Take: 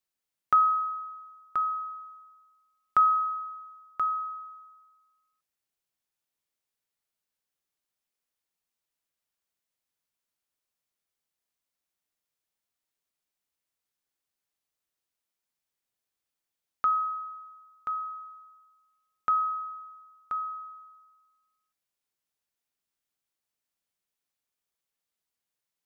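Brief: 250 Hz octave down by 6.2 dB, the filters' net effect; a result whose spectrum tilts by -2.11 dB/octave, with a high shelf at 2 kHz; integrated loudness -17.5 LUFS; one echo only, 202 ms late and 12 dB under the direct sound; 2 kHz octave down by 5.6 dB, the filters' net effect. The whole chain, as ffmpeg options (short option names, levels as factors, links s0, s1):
-af "equalizer=f=250:t=o:g=-8.5,highshelf=f=2000:g=-7.5,equalizer=f=2000:t=o:g=-4,aecho=1:1:202:0.251,volume=5.62"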